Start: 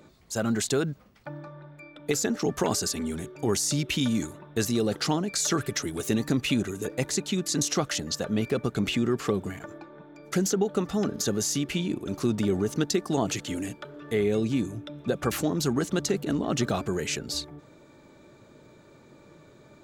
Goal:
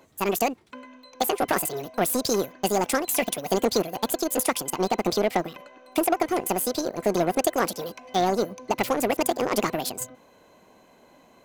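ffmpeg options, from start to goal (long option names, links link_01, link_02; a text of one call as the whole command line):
ffmpeg -i in.wav -af "asetrate=76440,aresample=44100,aeval=exprs='0.251*(cos(1*acos(clip(val(0)/0.251,-1,1)))-cos(1*PI/2))+0.0178*(cos(7*acos(clip(val(0)/0.251,-1,1)))-cos(7*PI/2))':channel_layout=same,volume=3.5dB" out.wav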